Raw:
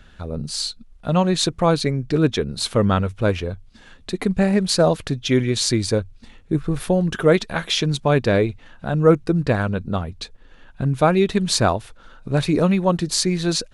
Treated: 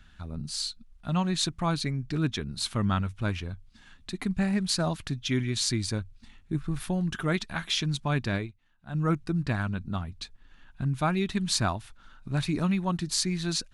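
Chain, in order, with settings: peaking EQ 490 Hz -15 dB 0.76 oct; 8.28–8.95 s: upward expansion 2.5:1, over -31 dBFS; trim -6.5 dB

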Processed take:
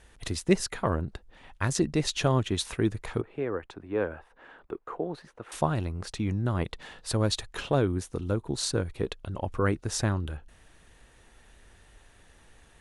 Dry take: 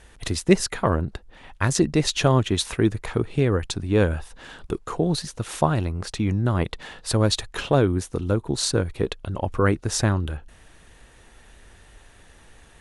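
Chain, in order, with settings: 3.21–5.52 s: three-band isolator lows -15 dB, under 290 Hz, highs -23 dB, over 2.3 kHz; trim -6 dB

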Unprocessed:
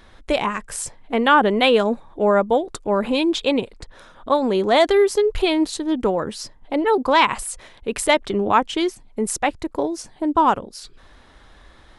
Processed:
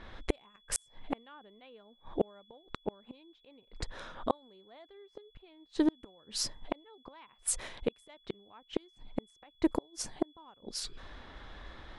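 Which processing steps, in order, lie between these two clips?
inverted gate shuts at -15 dBFS, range -39 dB; whistle 3.4 kHz -63 dBFS; level-controlled noise filter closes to 2.6 kHz, open at -33 dBFS

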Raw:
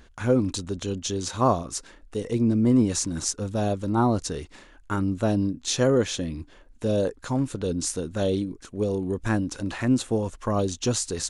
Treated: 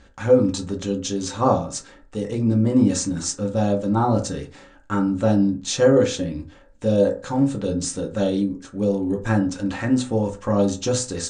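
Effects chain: steep low-pass 9.1 kHz 96 dB/octave; reverberation RT60 0.35 s, pre-delay 3 ms, DRR 0 dB

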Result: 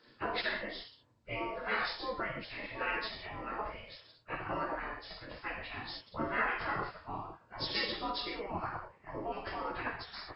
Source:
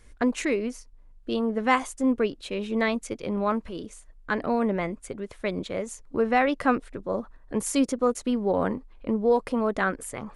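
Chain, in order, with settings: knee-point frequency compression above 1.2 kHz 1.5:1; gated-style reverb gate 220 ms falling, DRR -2.5 dB; spectral gate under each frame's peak -15 dB weak; trim -2.5 dB

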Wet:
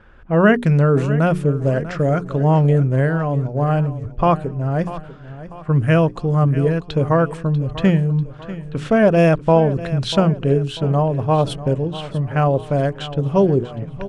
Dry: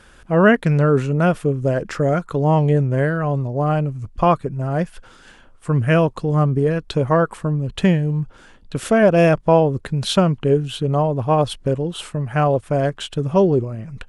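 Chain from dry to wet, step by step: level-controlled noise filter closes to 1.9 kHz, open at -14 dBFS; bass shelf 240 Hz +4.5 dB; hum notches 60/120/180/240/300/360/420 Hz; on a send: feedback delay 643 ms, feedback 44%, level -15 dB; on the sum: trim -1 dB

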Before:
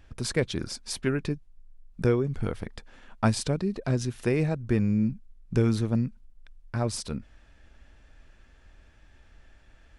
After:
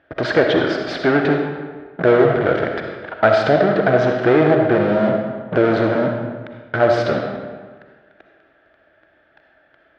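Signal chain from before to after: in parallel at -5 dB: fuzz box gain 41 dB, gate -44 dBFS; on the sum: cabinet simulation 220–3100 Hz, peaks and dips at 220 Hz -8 dB, 320 Hz +4 dB, 630 Hz +10 dB, 1 kHz -6 dB, 1.5 kHz +7 dB, 2.6 kHz -7 dB; algorithmic reverb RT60 1.5 s, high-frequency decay 0.7×, pre-delay 20 ms, DRR 2.5 dB; trim +2.5 dB

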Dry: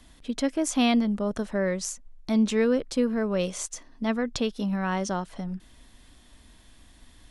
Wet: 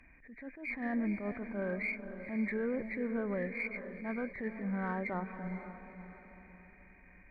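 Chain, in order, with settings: knee-point frequency compression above 1.5 kHz 4:1; peak limiter -19.5 dBFS, peak gain reduction 8.5 dB; Chebyshev shaper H 4 -34 dB, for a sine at -19.5 dBFS; on a send: echo that smears into a reverb 491 ms, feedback 44%, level -10 dB; on the sum: attacks held to a fixed rise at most 110 dB/s; trim -7.5 dB

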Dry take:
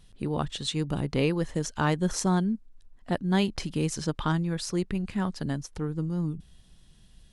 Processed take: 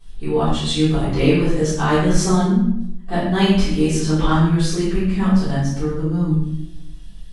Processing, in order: simulated room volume 160 m³, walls mixed, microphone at 3.7 m; chorus voices 6, 0.49 Hz, delay 24 ms, depth 2.6 ms; thinning echo 95 ms, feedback 26%, level -12.5 dB

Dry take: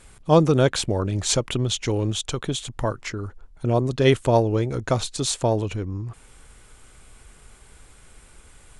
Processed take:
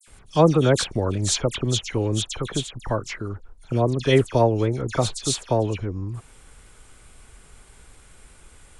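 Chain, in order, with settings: phase dispersion lows, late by 77 ms, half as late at 2.8 kHz

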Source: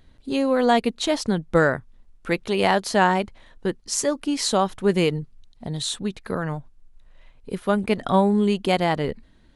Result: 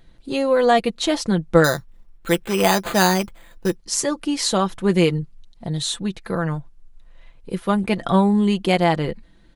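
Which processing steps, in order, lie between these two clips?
1.64–3.76 s: careless resampling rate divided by 8×, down none, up hold; comb 5.9 ms, depth 49%; trim +1.5 dB

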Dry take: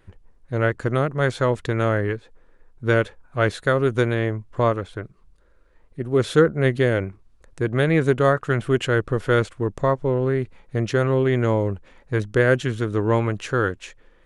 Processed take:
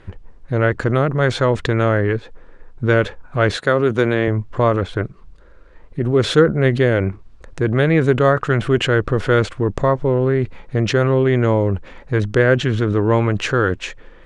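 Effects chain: 3.56–4.28 s: high-pass 150 Hz; 12.42–13.11 s: treble shelf 8.5 kHz -10.5 dB; in parallel at -2.5 dB: compressor with a negative ratio -30 dBFS, ratio -1; on the sum: distance through air 77 m; trim +3 dB

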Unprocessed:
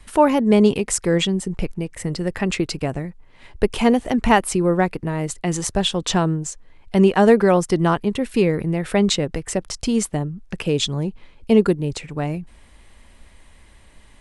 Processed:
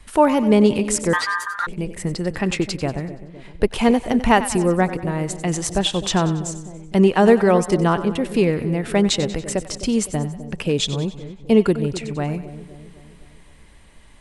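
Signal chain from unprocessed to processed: two-band feedback delay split 660 Hz, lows 256 ms, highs 94 ms, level -13 dB; 1.13–1.67 s: ring modulator 1.4 kHz

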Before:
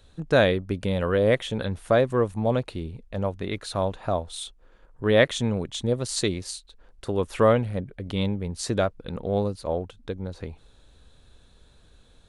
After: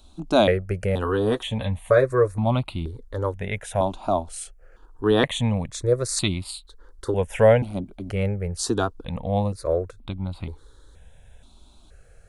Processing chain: 1.04–2.44 s: comb of notches 170 Hz; stepped phaser 2.1 Hz 480–1700 Hz; trim +6 dB

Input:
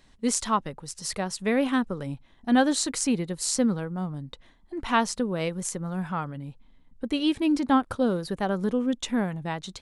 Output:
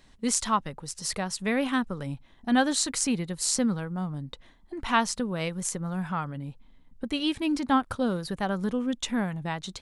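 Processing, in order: dynamic bell 400 Hz, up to -6 dB, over -37 dBFS, Q 0.87; trim +1 dB

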